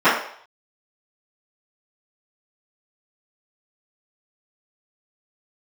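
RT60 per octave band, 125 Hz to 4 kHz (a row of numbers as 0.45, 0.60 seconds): 0.35, 0.40, 0.55, 0.60, 0.55, 0.60 seconds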